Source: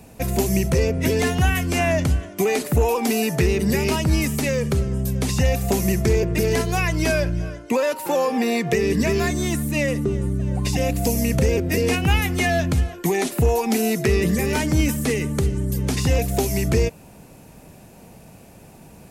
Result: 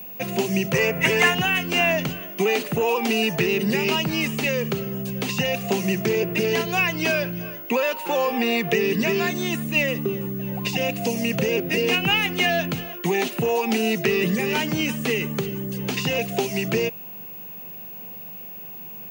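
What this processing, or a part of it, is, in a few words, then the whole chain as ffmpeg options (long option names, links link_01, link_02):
old television with a line whistle: -filter_complex "[0:a]highpass=frequency=160:width=0.5412,highpass=frequency=160:width=1.3066,equalizer=frequency=280:width_type=q:width=4:gain=-7,equalizer=frequency=590:width_type=q:width=4:gain=-3,equalizer=frequency=2800:width_type=q:width=4:gain=9,equalizer=frequency=5400:width_type=q:width=4:gain=-4,equalizer=frequency=7900:width_type=q:width=4:gain=-9,lowpass=frequency=8400:width=0.5412,lowpass=frequency=8400:width=1.3066,aeval=exprs='val(0)+0.0178*sin(2*PI*15625*n/s)':channel_layout=same,asettb=1/sr,asplit=3[link_01][link_02][link_03];[link_01]atrim=end=0.744[link_04];[link_02]atrim=start=0.74:end=1.35,asetpts=PTS-STARTPTS,afade=type=in:duration=0.004:curve=qsin,afade=type=out:start_time=0.606:duration=0.004:curve=qsin,equalizer=frequency=125:width_type=o:width=1:gain=7,equalizer=frequency=250:width_type=o:width=1:gain=-6,equalizer=frequency=1000:width_type=o:width=1:gain=7,equalizer=frequency=2000:width_type=o:width=1:gain=9,equalizer=frequency=4000:width_type=o:width=1:gain=-5,equalizer=frequency=8000:width_type=o:width=1:gain=8[link_05];[link_03]atrim=start=1.346[link_06];[link_04][link_05]acrossfade=duration=0.004:curve1=hsin:curve2=qsin[link_07];[link_07][link_06]acrossfade=duration=0.004:curve1=qsin:curve2=hsin"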